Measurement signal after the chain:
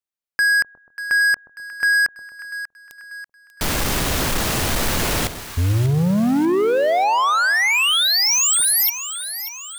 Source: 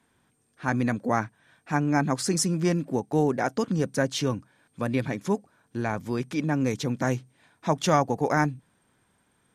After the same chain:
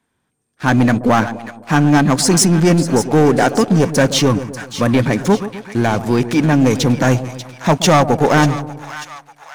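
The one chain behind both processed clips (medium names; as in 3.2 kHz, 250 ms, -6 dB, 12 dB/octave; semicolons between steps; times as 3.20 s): waveshaping leveller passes 3; on a send: two-band feedback delay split 900 Hz, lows 128 ms, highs 590 ms, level -12 dB; on the sum: trim +3.5 dB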